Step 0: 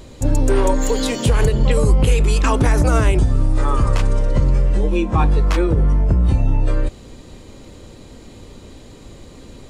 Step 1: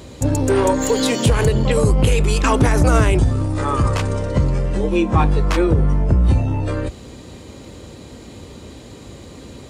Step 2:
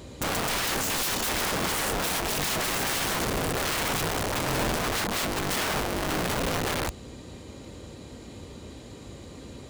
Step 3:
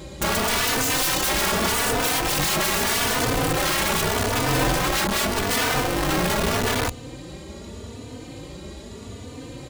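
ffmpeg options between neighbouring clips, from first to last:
ffmpeg -i in.wav -af "acontrast=35,highpass=frequency=55:width=0.5412,highpass=frequency=55:width=1.3066,volume=-2dB" out.wav
ffmpeg -i in.wav -af "aeval=exprs='(mod(7.5*val(0)+1,2)-1)/7.5':channel_layout=same,volume=-5.5dB" out.wav
ffmpeg -i in.wav -filter_complex "[0:a]asplit=2[link_01][link_02];[link_02]adelay=3.3,afreqshift=0.82[link_03];[link_01][link_03]amix=inputs=2:normalize=1,volume=8.5dB" out.wav

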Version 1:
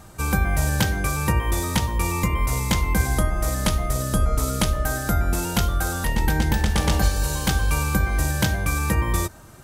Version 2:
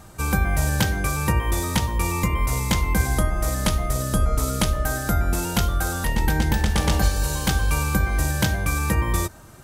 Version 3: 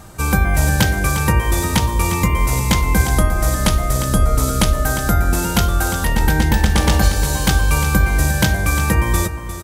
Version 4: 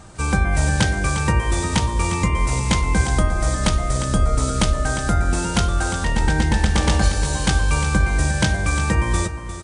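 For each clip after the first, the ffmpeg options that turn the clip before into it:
ffmpeg -i in.wav -af anull out.wav
ffmpeg -i in.wav -af "aecho=1:1:353:0.266,volume=5.5dB" out.wav
ffmpeg -i in.wav -af "volume=-3dB" -ar 22050 -c:a wmav2 -b:a 64k out.wma

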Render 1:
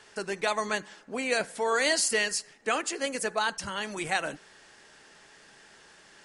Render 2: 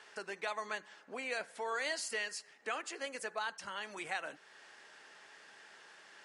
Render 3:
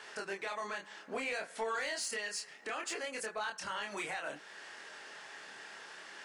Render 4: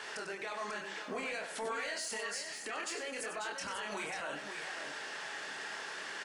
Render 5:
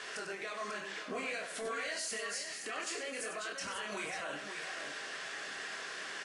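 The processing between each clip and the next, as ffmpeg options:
ffmpeg -i in.wav -af "highpass=frequency=850:poles=1,highshelf=frequency=4400:gain=-11.5,acompressor=threshold=-51dB:ratio=1.5,volume=1.5dB" out.wav
ffmpeg -i in.wav -af "alimiter=level_in=9.5dB:limit=-24dB:level=0:latency=1:release=223,volume=-9.5dB,flanger=delay=22.5:depth=7.5:speed=0.62,asoftclip=type=tanh:threshold=-38dB,volume=10.5dB" out.wav
ffmpeg -i in.wav -filter_complex "[0:a]alimiter=level_in=14.5dB:limit=-24dB:level=0:latency=1:release=66,volume=-14.5dB,asplit=2[link_01][link_02];[link_02]aecho=0:1:96|542:0.376|0.447[link_03];[link_01][link_03]amix=inputs=2:normalize=0,volume=6dB" out.wav
ffmpeg -i in.wav -af "asuperstop=centerf=880:order=12:qfactor=7.9" -ar 32000 -c:a libvorbis -b:a 32k out.ogg

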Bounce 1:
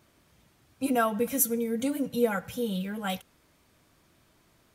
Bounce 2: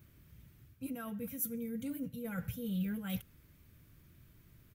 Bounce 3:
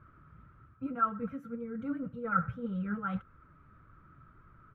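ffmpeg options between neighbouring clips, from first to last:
ffmpeg -i in.wav -af "areverse,acompressor=threshold=-34dB:ratio=12,areverse,firequalizer=gain_entry='entry(120,0);entry(220,-9);entry(750,-23);entry(1500,-14);entry(2300,-13);entry(4300,-17);entry(9000,-15);entry(15000,0)':delay=0.05:min_phase=1,volume=9dB" out.wav
ffmpeg -i in.wav -filter_complex "[0:a]asplit=2[link_01][link_02];[link_02]alimiter=level_in=5.5dB:limit=-24dB:level=0:latency=1:release=464,volume=-5.5dB,volume=1dB[link_03];[link_01][link_03]amix=inputs=2:normalize=0,flanger=delay=1.8:depth=5.4:regen=54:speed=1.8:shape=sinusoidal,lowpass=frequency=1300:width_type=q:width=15" out.wav

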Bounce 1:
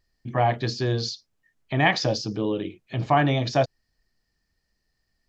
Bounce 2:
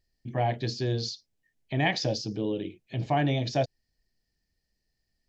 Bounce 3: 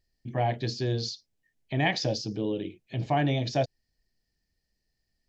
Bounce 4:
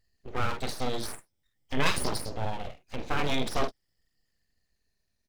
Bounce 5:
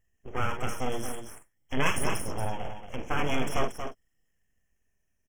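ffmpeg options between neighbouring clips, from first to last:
ffmpeg -i in.wav -af "equalizer=frequency=1200:width=2:gain=-12.5,volume=-3.5dB" out.wav
ffmpeg -i in.wav -af anull out.wav
ffmpeg -i in.wav -af "afftfilt=real='re*pow(10,10/40*sin(2*PI*(1.5*log(max(b,1)*sr/1024/100)/log(2)-(-0.45)*(pts-256)/sr)))':imag='im*pow(10,10/40*sin(2*PI*(1.5*log(max(b,1)*sr/1024/100)/log(2)-(-0.45)*(pts-256)/sr)))':win_size=1024:overlap=0.75,aecho=1:1:46|59:0.422|0.133,aeval=exprs='abs(val(0))':channel_layout=same" out.wav
ffmpeg -i in.wav -af "asuperstop=centerf=4200:order=20:qfactor=2.2,aecho=1:1:232:0.398" out.wav

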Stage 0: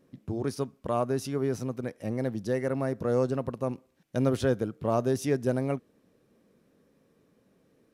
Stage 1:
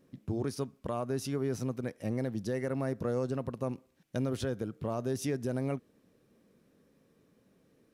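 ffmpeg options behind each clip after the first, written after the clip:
ffmpeg -i in.wav -af "equalizer=frequency=700:width=0.52:gain=-2.5,alimiter=limit=-23.5dB:level=0:latency=1:release=130" out.wav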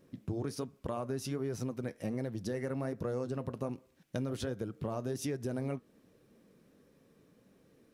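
ffmpeg -i in.wav -af "flanger=delay=1.9:depth=4.9:regen=-72:speed=1.3:shape=sinusoidal,acompressor=threshold=-41dB:ratio=2.5,volume=6.5dB" out.wav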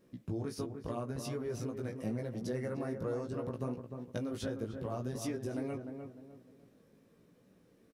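ffmpeg -i in.wav -filter_complex "[0:a]flanger=delay=16:depth=2.9:speed=0.8,asplit=2[link_01][link_02];[link_02]adelay=302,lowpass=frequency=1300:poles=1,volume=-6dB,asplit=2[link_03][link_04];[link_04]adelay=302,lowpass=frequency=1300:poles=1,volume=0.36,asplit=2[link_05][link_06];[link_06]adelay=302,lowpass=frequency=1300:poles=1,volume=0.36,asplit=2[link_07][link_08];[link_08]adelay=302,lowpass=frequency=1300:poles=1,volume=0.36[link_09];[link_03][link_05][link_07][link_09]amix=inputs=4:normalize=0[link_10];[link_01][link_10]amix=inputs=2:normalize=0,volume=1dB" out.wav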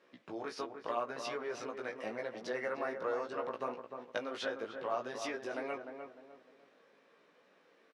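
ffmpeg -i in.wav -af "highpass=780,lowpass=3300,volume=10dB" out.wav

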